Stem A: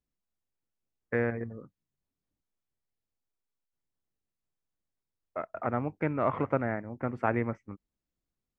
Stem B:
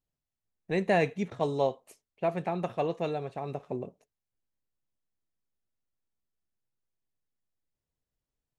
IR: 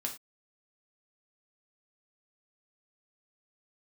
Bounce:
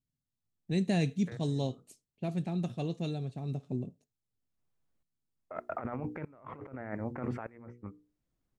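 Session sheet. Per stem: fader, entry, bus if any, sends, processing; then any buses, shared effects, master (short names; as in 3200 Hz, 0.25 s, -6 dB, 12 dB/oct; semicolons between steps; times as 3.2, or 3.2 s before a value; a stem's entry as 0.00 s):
+2.5 dB, 0.15 s, send -22.5 dB, notches 60/120/180/240/300/360/420/480 Hz; negative-ratio compressor -38 dBFS, ratio -1; tremolo saw up 0.82 Hz, depth 95%; auto duck -13 dB, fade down 1.95 s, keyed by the second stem
-4.5 dB, 0.00 s, send -18 dB, graphic EQ 125/250/500/1000/2000/4000/8000 Hz +9/+7/-7/-10/-7/+6/+8 dB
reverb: on, pre-delay 3 ms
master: mismatched tape noise reduction decoder only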